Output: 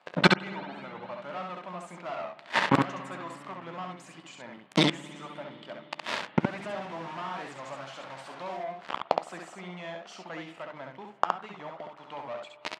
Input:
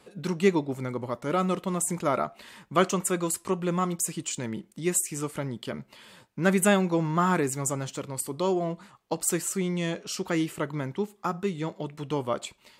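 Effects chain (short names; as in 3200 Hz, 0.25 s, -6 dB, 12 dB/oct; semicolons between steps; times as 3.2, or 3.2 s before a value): 6.4–8.57 delta modulation 64 kbps, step -30 dBFS; resonant low shelf 530 Hz -6.5 dB, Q 3; notches 50/100/150/200/250/300/350/400/450/500 Hz; sample leveller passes 5; AGC gain up to 13 dB; flipped gate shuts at -10 dBFS, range -37 dB; BPF 200–3000 Hz; early reflections 12 ms -17 dB, 67 ms -3.5 dB; reverb RT60 4.4 s, pre-delay 52 ms, DRR 16 dB; record warp 45 rpm, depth 100 cents; gain +5.5 dB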